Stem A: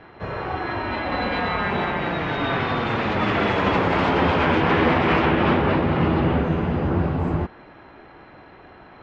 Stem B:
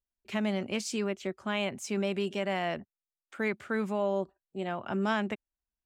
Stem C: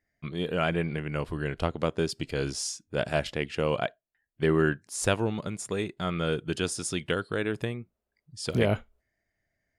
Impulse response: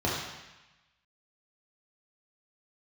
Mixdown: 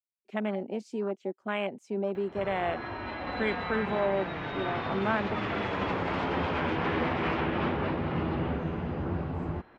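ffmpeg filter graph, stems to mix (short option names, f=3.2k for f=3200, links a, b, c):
-filter_complex "[0:a]acompressor=mode=upward:threshold=-34dB:ratio=2.5,adelay=2150,volume=-10.5dB[a];[1:a]lowpass=f=3.8k:p=1,afwtdn=0.0141,highpass=240,volume=2dB[b];[a][b]amix=inputs=2:normalize=0"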